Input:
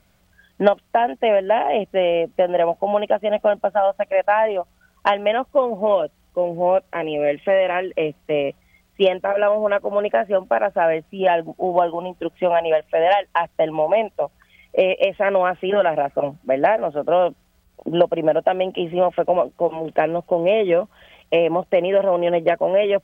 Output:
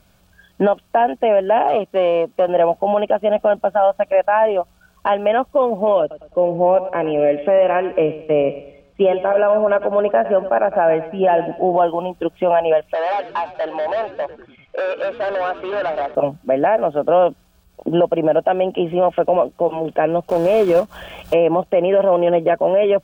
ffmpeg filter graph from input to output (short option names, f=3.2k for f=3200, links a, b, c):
-filter_complex "[0:a]asettb=1/sr,asplit=3[a][b][c];[a]atrim=end=1.684[d];[b]atrim=start=1.68:end=2.48,asetpts=PTS-STARTPTS,afade=t=in:d=0.004:c=qsin,afade=t=out:st=0.796:d=0.004:c=qsin,aeval=exprs='if(lt(val(0),0),0.708*val(0),val(0))':c=same,highpass=f=110:p=1,lowshelf=f=160:g=-6[e];[c]atrim=start=2.476[f];[d][e]acrossfade=d=0.004:c1=hsin:c2=qsin[g];[g][f]acrossfade=d=0.004:c1=qsin:c2=hsin,asettb=1/sr,asplit=3[h][i][j];[h]atrim=end=6.004[k];[i]atrim=start=6:end=11.77,asetpts=PTS-STARTPTS,afade=t=in:d=0.004:c=qsin,afade=t=out:st=5.766:d=0.004:c=qsin,aemphasis=mode=reproduction:type=75fm,aecho=1:1:106|212|318|424:0.178|0.0711|0.0285|0.0114,atrim=end_sample=254457[l];[j]atrim=start=11.766[m];[k][l]acrossfade=d=0.004:c1=hsin:c2=qsin[n];[n][m]acrossfade=d=0.004:c1=qsin:c2=hsin,asettb=1/sr,asplit=3[o][p][q];[o]atrim=end=12.944[r];[p]atrim=start=12.94:end=16.15,asetpts=PTS-STARTPTS,afade=t=in:d=0.004:c=qsin,afade=t=out:st=3.206:d=0.004:c=qsin,volume=21dB,asoftclip=hard,volume=-21dB,highpass=500,lowpass=3.1k,asplit=6[s][t][u][v][w][x];[t]adelay=96,afreqshift=-110,volume=-16dB[y];[u]adelay=192,afreqshift=-220,volume=-21.2dB[z];[v]adelay=288,afreqshift=-330,volume=-26.4dB[aa];[w]adelay=384,afreqshift=-440,volume=-31.6dB[ab];[x]adelay=480,afreqshift=-550,volume=-36.8dB[ac];[s][y][z][aa][ab][ac]amix=inputs=6:normalize=0,atrim=end_sample=141561[ad];[q]atrim=start=16.146[ae];[r][ad]acrossfade=d=0.004:c1=hsin:c2=qsin[af];[af][ae]acrossfade=d=0.004:c1=qsin:c2=hsin,asettb=1/sr,asplit=3[ag][ah][ai];[ag]atrim=end=20.294[aj];[ah]atrim=start=20.29:end=21.34,asetpts=PTS-STARTPTS,afade=t=in:d=0.004:c=qsin,afade=t=out:st=1.046:d=0.004:c=qsin,acompressor=mode=upward:threshold=-25dB:ratio=2.5:attack=3.2:release=140:knee=2.83:detection=peak,acrusher=bits=3:mode=log:mix=0:aa=0.000001[ak];[ai]atrim=start=21.336[al];[aj][ak]acrossfade=d=0.004:c1=hsin:c2=qsin[am];[am][al]acrossfade=d=0.004:c1=qsin:c2=hsin,bandreject=f=2k:w=5.2,acrossover=split=2500[an][ao];[ao]acompressor=threshold=-47dB:ratio=4:attack=1:release=60[ap];[an][ap]amix=inputs=2:normalize=0,alimiter=limit=-11.5dB:level=0:latency=1:release=18,volume=4.5dB"